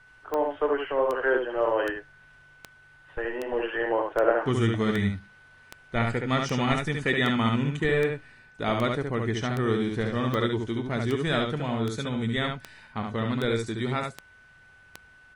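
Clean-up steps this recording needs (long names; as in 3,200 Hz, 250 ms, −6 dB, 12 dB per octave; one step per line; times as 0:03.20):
click removal
notch filter 1,500 Hz, Q 30
echo removal 70 ms −4 dB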